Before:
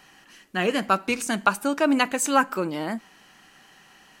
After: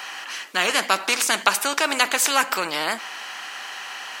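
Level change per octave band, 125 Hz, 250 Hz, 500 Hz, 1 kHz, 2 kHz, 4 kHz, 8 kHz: n/a, -9.5 dB, -2.0 dB, +1.5 dB, +6.0 dB, +10.5 dB, +8.0 dB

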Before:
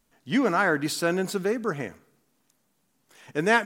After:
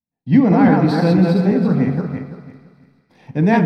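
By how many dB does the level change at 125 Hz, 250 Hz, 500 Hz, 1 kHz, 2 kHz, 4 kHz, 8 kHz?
+19.5 dB, +15.0 dB, +6.5 dB, +6.0 dB, -1.0 dB, -0.5 dB, under -10 dB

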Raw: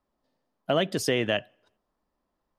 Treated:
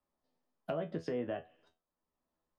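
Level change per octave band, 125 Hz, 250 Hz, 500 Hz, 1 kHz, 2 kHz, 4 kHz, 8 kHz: -11.0 dB, -10.0 dB, -10.5 dB, -12.0 dB, -19.5 dB, -26.0 dB, under -30 dB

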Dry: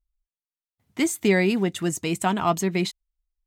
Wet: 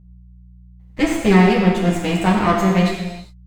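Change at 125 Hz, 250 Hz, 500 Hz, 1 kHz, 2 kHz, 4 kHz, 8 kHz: +10.5, +8.5, +5.5, +7.5, +5.5, +4.0, -3.5 dB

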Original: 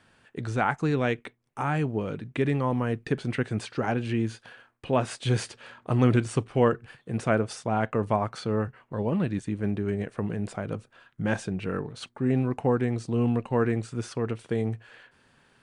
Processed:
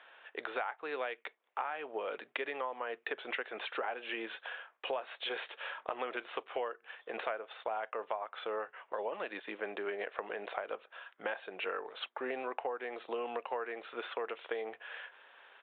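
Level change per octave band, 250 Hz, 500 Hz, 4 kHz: -23.0, -9.5, -2.5 dB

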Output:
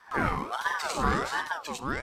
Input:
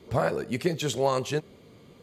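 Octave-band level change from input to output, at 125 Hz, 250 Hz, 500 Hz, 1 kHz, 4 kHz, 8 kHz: -4.5, -2.5, -9.0, +4.0, -1.5, -2.0 dB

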